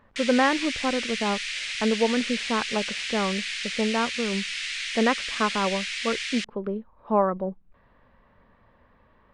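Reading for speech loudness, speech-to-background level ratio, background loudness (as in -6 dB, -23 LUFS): -27.5 LUFS, 2.0 dB, -29.5 LUFS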